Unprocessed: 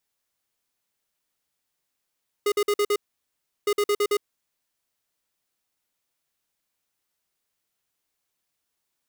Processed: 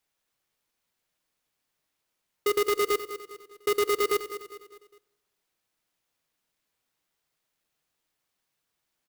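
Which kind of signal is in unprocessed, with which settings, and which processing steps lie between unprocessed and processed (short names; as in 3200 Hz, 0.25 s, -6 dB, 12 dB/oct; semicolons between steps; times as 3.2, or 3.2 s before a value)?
beep pattern square 412 Hz, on 0.06 s, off 0.05 s, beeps 5, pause 0.71 s, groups 2, -21.5 dBFS
feedback echo 0.203 s, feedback 44%, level -12 dB; shoebox room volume 2600 m³, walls furnished, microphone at 0.57 m; clock jitter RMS 0.032 ms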